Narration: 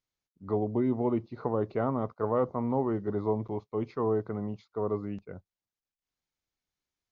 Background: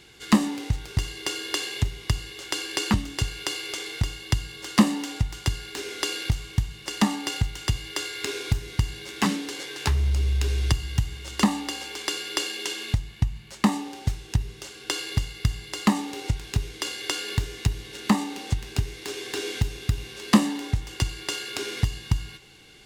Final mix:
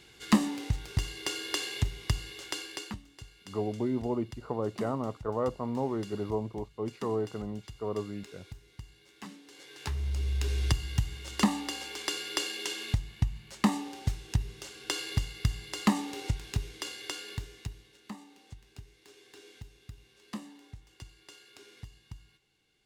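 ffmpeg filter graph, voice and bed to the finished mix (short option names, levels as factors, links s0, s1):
-filter_complex "[0:a]adelay=3050,volume=0.708[s0];[1:a]volume=4.47,afade=t=out:st=2.34:d=0.65:silence=0.133352,afade=t=in:st=9.44:d=1.2:silence=0.133352,afade=t=out:st=16.19:d=1.81:silence=0.125893[s1];[s0][s1]amix=inputs=2:normalize=0"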